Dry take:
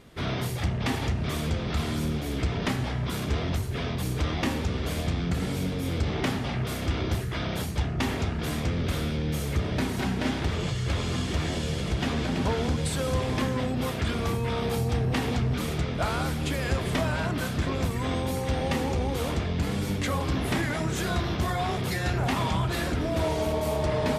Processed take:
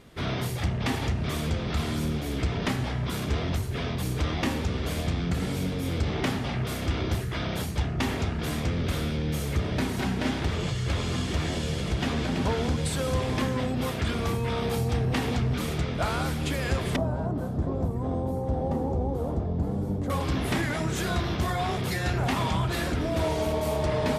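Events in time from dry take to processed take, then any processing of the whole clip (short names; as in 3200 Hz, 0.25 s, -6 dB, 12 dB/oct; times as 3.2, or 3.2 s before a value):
16.96–20.1 EQ curve 770 Hz 0 dB, 2400 Hz -25 dB, 3600 Hz -22 dB, 12000 Hz -16 dB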